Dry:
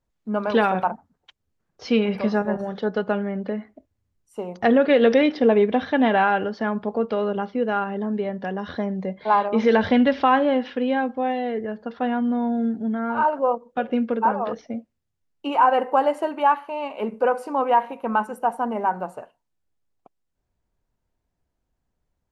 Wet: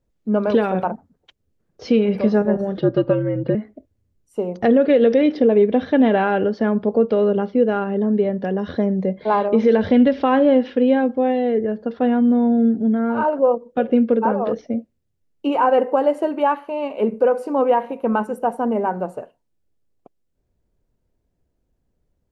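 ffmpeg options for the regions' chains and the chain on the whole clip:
-filter_complex "[0:a]asettb=1/sr,asplit=3[a][b][c];[a]atrim=end=2.774[d];[b]atrim=start=2.77:end=3.55,asetpts=PTS-STARTPTS,afade=t=in:d=0.004:c=qsin,afade=t=out:st=0.776:d=0.004:c=qsin,lowpass=f=4.8k:w=0.5412,lowpass=f=4.8k:w=1.3066,aecho=1:1:3.1:0.81,atrim=end_sample=34398,afreqshift=-66[e];[c]atrim=start=3.546[f];[d][e]acrossfade=d=0.004:c1=hsin:c2=qsin[g];[g][f]acrossfade=d=0.004:c1=qsin:c2=hsin,lowshelf=f=660:t=q:w=1.5:g=6.5,alimiter=limit=-6.5dB:level=0:latency=1:release=332"

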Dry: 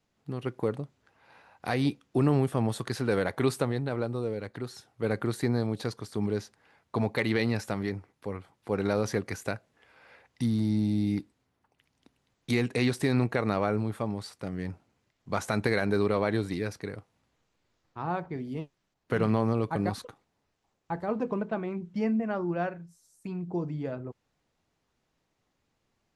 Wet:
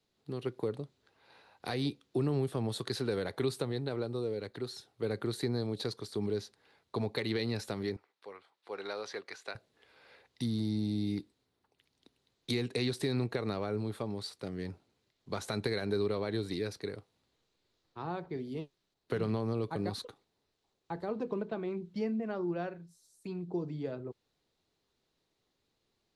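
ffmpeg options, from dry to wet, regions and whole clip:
-filter_complex "[0:a]asettb=1/sr,asplit=3[a][b][c];[a]atrim=end=7.964[d];[b]atrim=start=7.96:end=9.55,asetpts=PTS-STARTPTS,afade=t=in:d=0.004:c=qsin,afade=t=out:st=1.586:d=0.004:c=qsin,acrossover=split=8300[e][f];[f]acompressor=threshold=-58dB:ratio=4:attack=1:release=60[g];[e][g]amix=inputs=2:normalize=0,highpass=880,aemphasis=mode=reproduction:type=bsi[h];[c]atrim=start=9.546[i];[d][h]acrossfade=d=0.004:c1=hsin:c2=qsin[j];[j][i]acrossfade=d=0.004:c1=qsin:c2=hsin,acrossover=split=180[k][l];[l]acompressor=threshold=-30dB:ratio=3[m];[k][m]amix=inputs=2:normalize=0,equalizer=f=400:t=o:w=0.67:g=7,equalizer=f=4k:t=o:w=0.67:g=11,equalizer=f=10k:t=o:w=0.67:g=4,volume=-6dB"

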